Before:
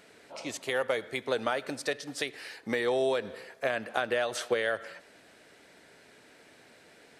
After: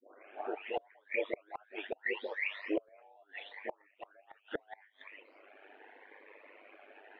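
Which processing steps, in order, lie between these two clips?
spectral delay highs late, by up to 0.766 s; reverb removal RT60 0.83 s; flange 1.8 Hz, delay 0.1 ms, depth 9.2 ms, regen +74%; mistuned SSB +140 Hz 200–2500 Hz; ring modulator 50 Hz; flipped gate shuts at -34 dBFS, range -36 dB; cascading phaser rising 0.77 Hz; gain +15.5 dB

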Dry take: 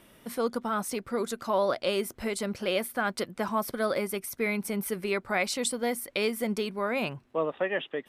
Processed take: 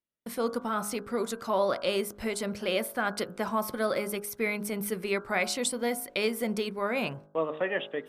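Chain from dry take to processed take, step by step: gate -47 dBFS, range -40 dB; de-hum 51.41 Hz, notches 32

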